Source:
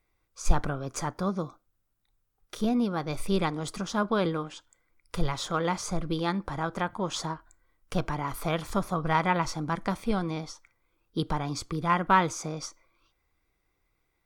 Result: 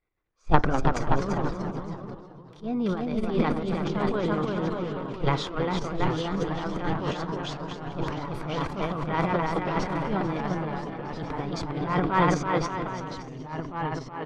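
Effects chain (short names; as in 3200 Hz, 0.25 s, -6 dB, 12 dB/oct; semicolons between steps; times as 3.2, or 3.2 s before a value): LPF 3200 Hz 12 dB/oct; bell 390 Hz +3.5 dB 0.87 oct; bouncing-ball echo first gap 0.33 s, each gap 0.75×, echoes 5; transient shaper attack -10 dB, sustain +11 dB; echoes that change speed 0.135 s, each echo -2 st, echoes 2, each echo -6 dB; upward expander 1.5:1, over -37 dBFS; gain +2 dB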